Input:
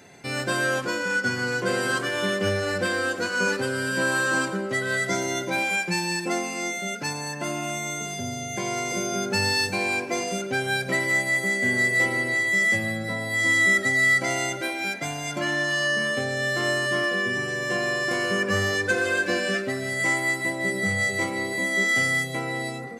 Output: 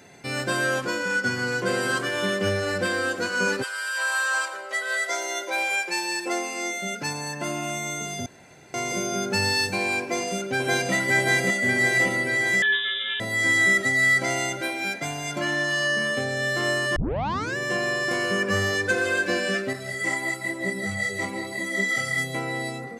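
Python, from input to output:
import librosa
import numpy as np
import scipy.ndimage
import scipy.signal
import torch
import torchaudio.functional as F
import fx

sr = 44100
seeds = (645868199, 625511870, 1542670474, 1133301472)

y = fx.highpass(x, sr, hz=fx.line((3.62, 910.0), (6.81, 250.0)), slope=24, at=(3.62, 6.81), fade=0.02)
y = fx.echo_throw(y, sr, start_s=10.01, length_s=0.91, ms=580, feedback_pct=65, wet_db=-1.0)
y = fx.freq_invert(y, sr, carrier_hz=3700, at=(12.62, 13.2))
y = fx.ensemble(y, sr, at=(19.73, 22.18))
y = fx.edit(y, sr, fx.room_tone_fill(start_s=8.26, length_s=0.48),
    fx.tape_start(start_s=16.96, length_s=0.61), tone=tone)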